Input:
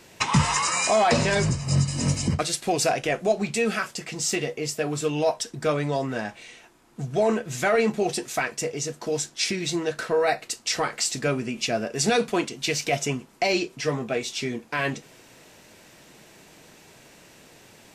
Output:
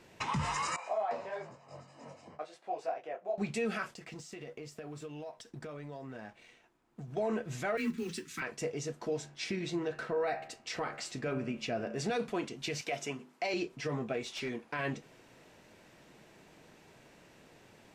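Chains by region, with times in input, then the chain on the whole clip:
0:00.76–0:03.38: resonant band-pass 700 Hz, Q 1.7 + spectral tilt +2.5 dB per octave + micro pitch shift up and down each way 35 cents
0:03.94–0:07.17: mu-law and A-law mismatch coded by A + downward compressor 8 to 1, threshold −34 dBFS
0:07.77–0:08.42: one scale factor per block 5 bits + frequency shifter +22 Hz + Butterworth band-reject 650 Hz, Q 0.65
0:09.07–0:12.11: high-shelf EQ 5,200 Hz −7 dB + hum removal 71.76 Hz, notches 40
0:12.81–0:13.54: high-pass filter 160 Hz + low-shelf EQ 500 Hz −6 dB + mains-hum notches 50/100/150/200/250/300/350/400/450/500 Hz
0:14.26–0:14.72: parametric band 9,800 Hz +8.5 dB 0.22 octaves + mid-hump overdrive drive 8 dB, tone 4,600 Hz, clips at −17 dBFS + gain into a clipping stage and back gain 24 dB
whole clip: high-shelf EQ 4,000 Hz −11 dB; brickwall limiter −19 dBFS; level −6 dB

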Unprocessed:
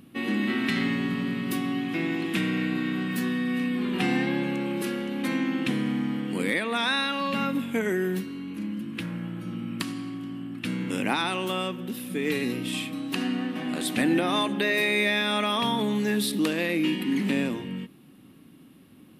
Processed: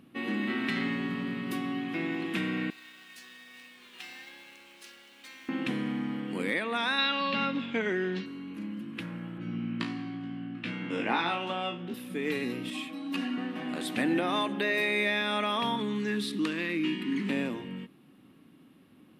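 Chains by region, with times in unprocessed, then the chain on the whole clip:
0:02.70–0:05.49: resonant band-pass 5,900 Hz, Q 1.3 + log-companded quantiser 4 bits
0:06.98–0:08.26: low-pass filter 5,500 Hz 24 dB per octave + parametric band 3,900 Hz +8 dB 1.6 octaves
0:09.38–0:11.94: band-pass filter 120–4,500 Hz + flutter between parallel walls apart 3 metres, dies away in 0.27 s
0:12.70–0:13.38: comb filter 3.6 ms, depth 67% + string-ensemble chorus
0:15.76–0:17.29: low-pass filter 9,200 Hz + flat-topped bell 640 Hz −10 dB 1 octave
whole clip: low-pass filter 1,500 Hz 6 dB per octave; spectral tilt +2 dB per octave; level −1 dB

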